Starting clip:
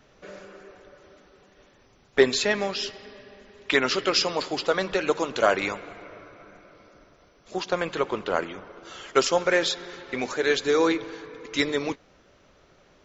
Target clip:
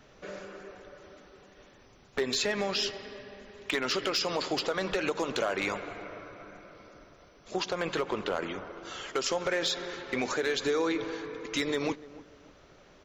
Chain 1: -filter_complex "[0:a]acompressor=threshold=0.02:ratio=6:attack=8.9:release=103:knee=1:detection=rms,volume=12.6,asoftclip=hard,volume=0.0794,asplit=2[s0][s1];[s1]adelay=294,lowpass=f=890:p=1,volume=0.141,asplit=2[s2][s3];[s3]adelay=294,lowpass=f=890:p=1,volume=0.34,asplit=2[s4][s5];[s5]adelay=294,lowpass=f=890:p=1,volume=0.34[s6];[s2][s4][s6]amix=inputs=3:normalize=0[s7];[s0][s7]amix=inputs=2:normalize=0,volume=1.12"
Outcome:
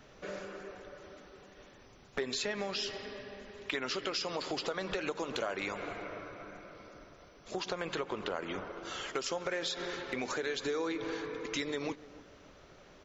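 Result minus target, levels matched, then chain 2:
compression: peak gain reduction +6 dB
-filter_complex "[0:a]acompressor=threshold=0.0473:ratio=6:attack=8.9:release=103:knee=1:detection=rms,volume=12.6,asoftclip=hard,volume=0.0794,asplit=2[s0][s1];[s1]adelay=294,lowpass=f=890:p=1,volume=0.141,asplit=2[s2][s3];[s3]adelay=294,lowpass=f=890:p=1,volume=0.34,asplit=2[s4][s5];[s5]adelay=294,lowpass=f=890:p=1,volume=0.34[s6];[s2][s4][s6]amix=inputs=3:normalize=0[s7];[s0][s7]amix=inputs=2:normalize=0,volume=1.12"

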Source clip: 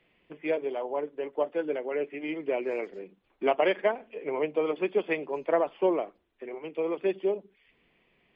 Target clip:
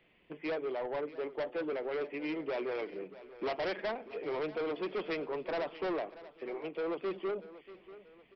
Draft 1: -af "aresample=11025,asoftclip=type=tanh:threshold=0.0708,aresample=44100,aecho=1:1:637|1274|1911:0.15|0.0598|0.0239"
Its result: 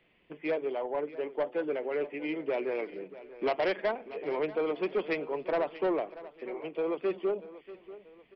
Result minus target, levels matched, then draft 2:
saturation: distortion -6 dB
-af "aresample=11025,asoftclip=type=tanh:threshold=0.0266,aresample=44100,aecho=1:1:637|1274|1911:0.15|0.0598|0.0239"

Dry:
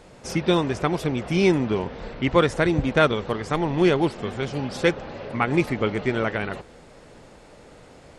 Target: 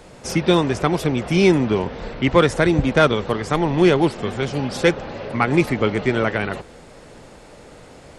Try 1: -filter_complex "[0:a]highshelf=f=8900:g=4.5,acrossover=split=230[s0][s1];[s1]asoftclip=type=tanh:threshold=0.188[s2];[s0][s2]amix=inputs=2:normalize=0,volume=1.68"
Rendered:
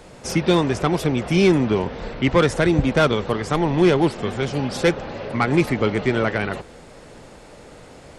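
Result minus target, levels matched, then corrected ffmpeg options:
saturation: distortion +9 dB
-filter_complex "[0:a]highshelf=f=8900:g=4.5,acrossover=split=230[s0][s1];[s1]asoftclip=type=tanh:threshold=0.422[s2];[s0][s2]amix=inputs=2:normalize=0,volume=1.68"

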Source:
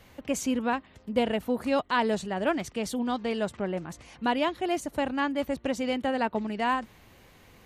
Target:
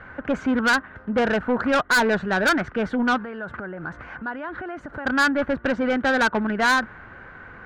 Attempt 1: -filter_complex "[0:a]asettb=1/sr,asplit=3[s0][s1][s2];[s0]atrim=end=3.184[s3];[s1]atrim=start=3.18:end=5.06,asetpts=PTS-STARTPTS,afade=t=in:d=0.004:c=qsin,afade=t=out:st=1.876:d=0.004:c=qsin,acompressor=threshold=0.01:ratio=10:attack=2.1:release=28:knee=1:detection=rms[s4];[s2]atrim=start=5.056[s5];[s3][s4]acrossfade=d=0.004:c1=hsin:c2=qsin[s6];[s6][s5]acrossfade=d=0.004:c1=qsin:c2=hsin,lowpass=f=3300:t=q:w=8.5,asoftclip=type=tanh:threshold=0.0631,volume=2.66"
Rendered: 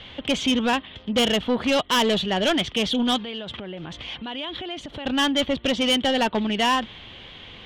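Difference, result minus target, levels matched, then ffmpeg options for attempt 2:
4 kHz band +10.5 dB
-filter_complex "[0:a]asettb=1/sr,asplit=3[s0][s1][s2];[s0]atrim=end=3.184[s3];[s1]atrim=start=3.18:end=5.06,asetpts=PTS-STARTPTS,afade=t=in:d=0.004:c=qsin,afade=t=out:st=1.876:d=0.004:c=qsin,acompressor=threshold=0.01:ratio=10:attack=2.1:release=28:knee=1:detection=rms[s4];[s2]atrim=start=5.056[s5];[s3][s4]acrossfade=d=0.004:c1=hsin:c2=qsin[s6];[s6][s5]acrossfade=d=0.004:c1=qsin:c2=hsin,lowpass=f=1500:t=q:w=8.5,asoftclip=type=tanh:threshold=0.0631,volume=2.66"

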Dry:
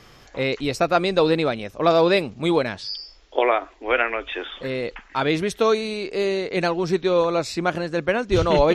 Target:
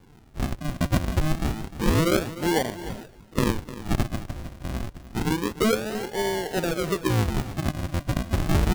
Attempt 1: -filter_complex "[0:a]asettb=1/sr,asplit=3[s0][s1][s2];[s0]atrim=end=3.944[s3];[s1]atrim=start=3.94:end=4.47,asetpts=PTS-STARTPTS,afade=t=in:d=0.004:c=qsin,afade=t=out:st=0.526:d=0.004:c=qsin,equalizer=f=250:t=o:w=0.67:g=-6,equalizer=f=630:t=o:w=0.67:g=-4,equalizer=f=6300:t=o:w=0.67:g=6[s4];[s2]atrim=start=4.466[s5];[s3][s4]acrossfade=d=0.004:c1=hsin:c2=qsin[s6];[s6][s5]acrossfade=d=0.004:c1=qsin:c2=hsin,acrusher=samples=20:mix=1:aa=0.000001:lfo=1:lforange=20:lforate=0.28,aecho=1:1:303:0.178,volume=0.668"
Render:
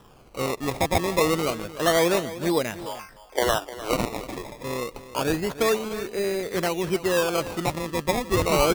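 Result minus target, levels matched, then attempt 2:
decimation with a swept rate: distortion -21 dB
-filter_complex "[0:a]asettb=1/sr,asplit=3[s0][s1][s2];[s0]atrim=end=3.944[s3];[s1]atrim=start=3.94:end=4.47,asetpts=PTS-STARTPTS,afade=t=in:d=0.004:c=qsin,afade=t=out:st=0.526:d=0.004:c=qsin,equalizer=f=250:t=o:w=0.67:g=-6,equalizer=f=630:t=o:w=0.67:g=-4,equalizer=f=6300:t=o:w=0.67:g=6[s4];[s2]atrim=start=4.466[s5];[s3][s4]acrossfade=d=0.004:c1=hsin:c2=qsin[s6];[s6][s5]acrossfade=d=0.004:c1=qsin:c2=hsin,acrusher=samples=68:mix=1:aa=0.000001:lfo=1:lforange=68:lforate=0.28,aecho=1:1:303:0.178,volume=0.668"

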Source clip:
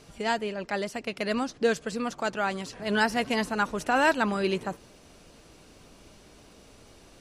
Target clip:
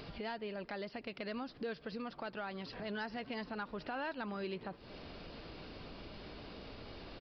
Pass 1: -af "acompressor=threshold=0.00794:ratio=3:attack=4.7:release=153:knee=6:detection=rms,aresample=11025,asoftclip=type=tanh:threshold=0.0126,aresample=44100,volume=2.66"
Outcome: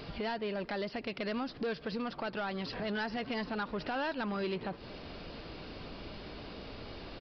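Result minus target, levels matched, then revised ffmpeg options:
compression: peak gain reduction -8 dB
-af "acompressor=threshold=0.002:ratio=3:attack=4.7:release=153:knee=6:detection=rms,aresample=11025,asoftclip=type=tanh:threshold=0.0126,aresample=44100,volume=2.66"

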